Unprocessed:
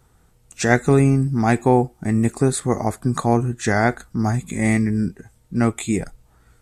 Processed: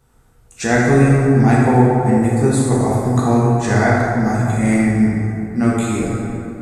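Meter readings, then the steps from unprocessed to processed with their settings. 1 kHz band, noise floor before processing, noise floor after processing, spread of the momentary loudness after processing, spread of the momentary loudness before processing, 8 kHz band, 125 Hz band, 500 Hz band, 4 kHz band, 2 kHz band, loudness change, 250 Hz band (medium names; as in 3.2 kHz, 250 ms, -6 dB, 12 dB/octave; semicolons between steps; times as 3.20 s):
+4.5 dB, -57 dBFS, -51 dBFS, 8 LU, 8 LU, +1.5 dB, +5.5 dB, +4.0 dB, +1.5 dB, +3.5 dB, +4.5 dB, +5.0 dB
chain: plate-style reverb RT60 2.9 s, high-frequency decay 0.45×, DRR -6.5 dB; trim -3.5 dB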